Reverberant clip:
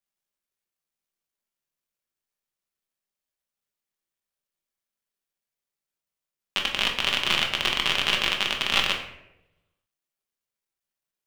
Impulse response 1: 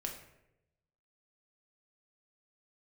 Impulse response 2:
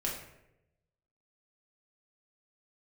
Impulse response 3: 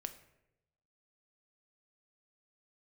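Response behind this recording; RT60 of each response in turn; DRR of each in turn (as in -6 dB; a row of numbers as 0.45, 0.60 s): 1; 0.90, 0.90, 0.90 s; 0.5, -4.5, 8.0 dB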